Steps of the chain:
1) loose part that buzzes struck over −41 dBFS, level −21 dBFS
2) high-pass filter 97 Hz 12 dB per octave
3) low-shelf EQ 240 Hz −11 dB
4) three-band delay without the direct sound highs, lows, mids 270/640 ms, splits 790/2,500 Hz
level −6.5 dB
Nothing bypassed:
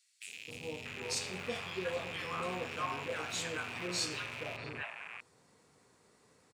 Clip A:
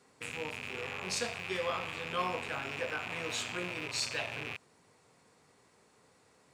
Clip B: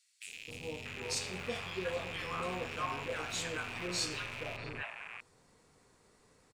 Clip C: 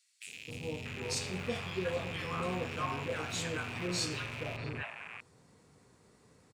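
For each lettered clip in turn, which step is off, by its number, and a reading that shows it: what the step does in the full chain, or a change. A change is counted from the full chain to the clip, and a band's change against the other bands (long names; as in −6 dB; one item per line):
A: 4, echo-to-direct ratio 8.0 dB to none audible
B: 2, 125 Hz band +1.5 dB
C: 3, 125 Hz band +8.0 dB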